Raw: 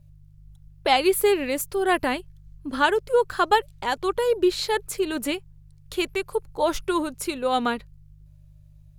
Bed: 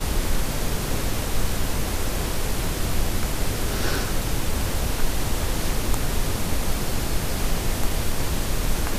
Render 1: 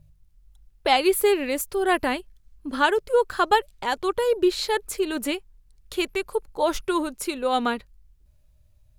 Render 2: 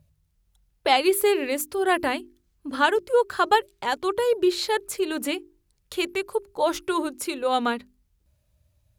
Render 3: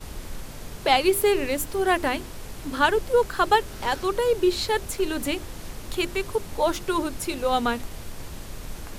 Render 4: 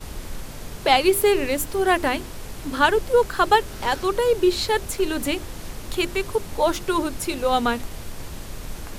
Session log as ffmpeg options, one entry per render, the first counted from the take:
-af "bandreject=f=50:t=h:w=4,bandreject=f=100:t=h:w=4,bandreject=f=150:t=h:w=4"
-af "highpass=71,bandreject=f=50:t=h:w=6,bandreject=f=100:t=h:w=6,bandreject=f=150:t=h:w=6,bandreject=f=200:t=h:w=6,bandreject=f=250:t=h:w=6,bandreject=f=300:t=h:w=6,bandreject=f=350:t=h:w=6,bandreject=f=400:t=h:w=6"
-filter_complex "[1:a]volume=-13dB[a];[0:a][a]amix=inputs=2:normalize=0"
-af "volume=2.5dB"

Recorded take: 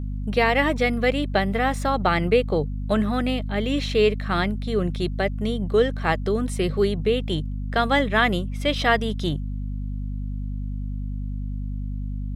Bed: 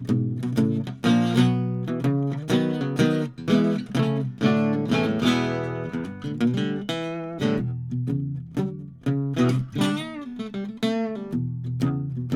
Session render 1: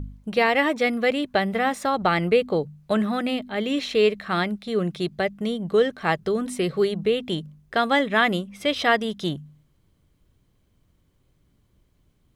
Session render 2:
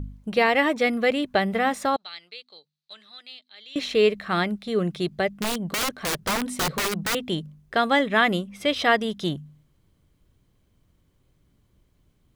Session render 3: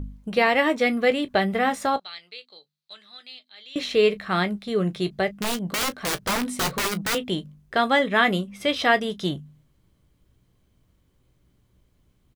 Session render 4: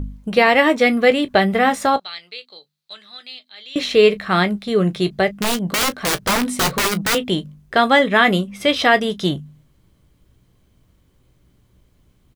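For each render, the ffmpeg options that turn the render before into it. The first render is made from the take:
-af "bandreject=f=50:t=h:w=4,bandreject=f=100:t=h:w=4,bandreject=f=150:t=h:w=4,bandreject=f=200:t=h:w=4,bandreject=f=250:t=h:w=4"
-filter_complex "[0:a]asettb=1/sr,asplit=3[a][b][c];[a]atrim=end=1.964[d];[b]atrim=start=1.96:end=3.76,asetpts=PTS-STARTPTS,afade=t=in:d=0.004:c=qsin,afade=t=out:st=1.796:d=0.004:c=qsin,bandpass=f=4.1k:t=q:w=4.9[e];[c]atrim=start=3.756[f];[d][e]acrossfade=d=0.004:c1=hsin:c2=qsin[g];[g][f]acrossfade=d=0.004:c1=qsin:c2=hsin,asettb=1/sr,asplit=3[h][i][j];[h]atrim=end=5.344[k];[i]atrim=start=5.34:end=7.15,asetpts=PTS-STARTPTS,afade=t=in:d=0.004:c=qsin,afade=t=out:st=1.806:d=0.004:c=qsin,aeval=exprs='(mod(10*val(0)+1,2)-1)/10':c=same[l];[j]atrim=start=7.146[m];[k][l]acrossfade=d=0.004:c1=hsin:c2=qsin[n];[n][m]acrossfade=d=0.004:c1=qsin:c2=hsin"
-af "aecho=1:1:16|34:0.299|0.126"
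-af "volume=6.5dB,alimiter=limit=-2dB:level=0:latency=1"

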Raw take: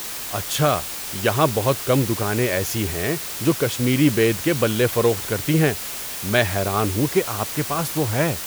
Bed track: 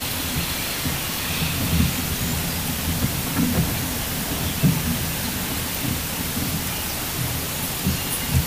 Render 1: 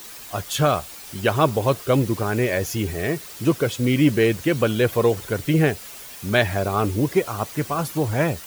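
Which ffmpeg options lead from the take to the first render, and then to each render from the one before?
-af "afftdn=nr=10:nf=-31"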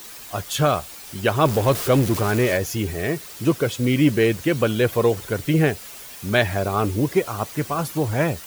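-filter_complex "[0:a]asettb=1/sr,asplit=3[a][b][c];[a]atrim=end=1.454[d];[b]atrim=start=1.45:end=2.57,asetpts=PTS-STARTPTS,afade=t=in:d=0.004:c=qsin,afade=t=out:st=1.116:d=0.004:c=qsin,aeval=exprs='val(0)+0.5*0.0596*sgn(val(0))':c=same[e];[c]atrim=start=2.566[f];[d][e]acrossfade=d=0.004:c1=hsin:c2=qsin[g];[g][f]acrossfade=d=0.004:c1=qsin:c2=hsin"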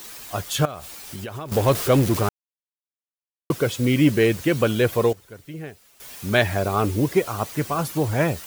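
-filter_complex "[0:a]asettb=1/sr,asplit=3[a][b][c];[a]atrim=end=0.654[d];[b]atrim=start=0.65:end=1.52,asetpts=PTS-STARTPTS,afade=t=in:d=0.004:c=qsin,afade=t=out:st=0.866:d=0.004:c=qsin,acompressor=threshold=-29dB:ratio=12:attack=3.2:release=140:knee=1:detection=peak[e];[c]atrim=start=1.516[f];[d][e]acrossfade=d=0.004:c1=hsin:c2=qsin[g];[g][f]acrossfade=d=0.004:c1=qsin:c2=hsin,asplit=5[h][i][j][k][l];[h]atrim=end=2.29,asetpts=PTS-STARTPTS,afade=t=out:st=2.286:d=0.004:c=hsin[m];[i]atrim=start=2.29:end=3.5,asetpts=PTS-STARTPTS,volume=0[n];[j]atrim=start=3.5:end=5.13,asetpts=PTS-STARTPTS,afade=t=in:d=0.004:c=hsin,afade=t=out:st=1.19:d=0.44:c=log:silence=0.141254[o];[k]atrim=start=5.13:end=6,asetpts=PTS-STARTPTS,volume=-17dB[p];[l]atrim=start=6,asetpts=PTS-STARTPTS,afade=t=in:d=0.44:c=log:silence=0.141254[q];[m][n][o][p][q]concat=n=5:v=0:a=1"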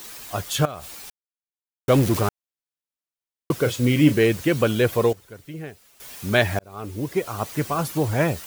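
-filter_complex "[0:a]asettb=1/sr,asplit=3[a][b][c];[a]atrim=end=3.544[d];[b]atrim=start=3.54:end=4.14,asetpts=PTS-STARTPTS,afade=t=in:d=0.004:c=qsin,afade=t=out:st=0.596:d=0.004:c=qsin,asplit=2[e][f];[f]adelay=33,volume=-10dB[g];[e][g]amix=inputs=2:normalize=0,atrim=end_sample=26460[h];[c]atrim=start=4.136[i];[d][h]acrossfade=d=0.004:c1=hsin:c2=qsin[j];[j][i]acrossfade=d=0.004:c1=qsin:c2=hsin,asplit=4[k][l][m][n];[k]atrim=end=1.1,asetpts=PTS-STARTPTS,afade=t=out:st=1.096:d=0.004:c=hsin[o];[l]atrim=start=1.1:end=1.88,asetpts=PTS-STARTPTS,volume=0[p];[m]atrim=start=1.88:end=6.59,asetpts=PTS-STARTPTS,afade=t=in:d=0.004:c=hsin,afade=t=out:st=4.706:d=0.004:c=hsin[q];[n]atrim=start=6.59,asetpts=PTS-STARTPTS,afade=t=in:d=0.96[r];[o][p][q][r]concat=n=4:v=0:a=1"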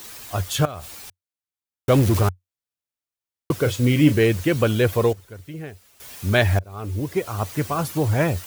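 -af "equalizer=f=91:t=o:w=0.46:g=11"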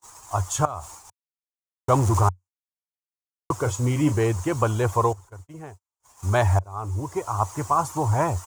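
-af "firequalizer=gain_entry='entry(100,0);entry(190,-11);entry(340,-4);entry(510,-6);entry(940,11);entry(1600,-7);entry(2500,-11);entry(4000,-12);entry(6800,5);entry(13000,-13)':delay=0.05:min_phase=1,agate=range=-39dB:threshold=-41dB:ratio=16:detection=peak"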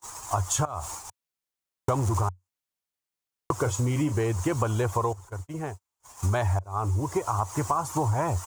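-filter_complex "[0:a]asplit=2[a][b];[b]alimiter=limit=-14dB:level=0:latency=1:release=91,volume=0dB[c];[a][c]amix=inputs=2:normalize=0,acompressor=threshold=-23dB:ratio=6"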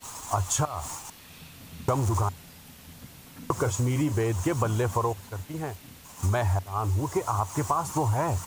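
-filter_complex "[1:a]volume=-23.5dB[a];[0:a][a]amix=inputs=2:normalize=0"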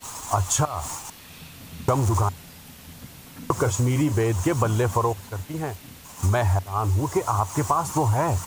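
-af "volume=4dB"

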